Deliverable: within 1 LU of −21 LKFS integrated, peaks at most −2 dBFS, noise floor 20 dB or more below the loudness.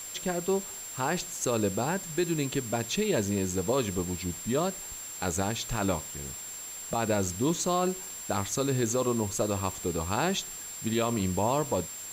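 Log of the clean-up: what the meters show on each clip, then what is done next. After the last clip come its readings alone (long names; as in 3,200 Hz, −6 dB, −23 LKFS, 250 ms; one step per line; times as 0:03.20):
interfering tone 7,400 Hz; level of the tone −39 dBFS; background noise floor −41 dBFS; target noise floor −50 dBFS; integrated loudness −30.0 LKFS; sample peak −16.0 dBFS; target loudness −21.0 LKFS
→ notch filter 7,400 Hz, Q 30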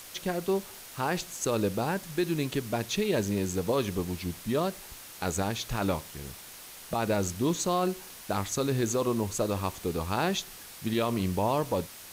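interfering tone none found; background noise floor −47 dBFS; target noise floor −50 dBFS
→ broadband denoise 6 dB, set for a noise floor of −47 dBFS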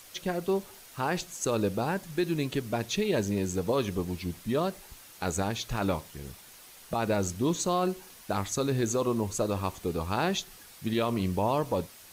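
background noise floor −51 dBFS; integrated loudness −30.5 LKFS; sample peak −17.0 dBFS; target loudness −21.0 LKFS
→ level +9.5 dB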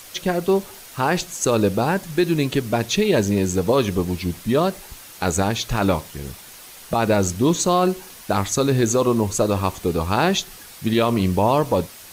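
integrated loudness −21.0 LKFS; sample peak −7.5 dBFS; background noise floor −42 dBFS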